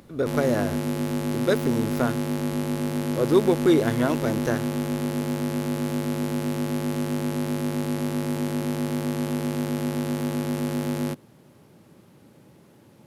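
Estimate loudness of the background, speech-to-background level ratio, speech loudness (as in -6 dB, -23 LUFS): -27.5 LUFS, 2.5 dB, -25.0 LUFS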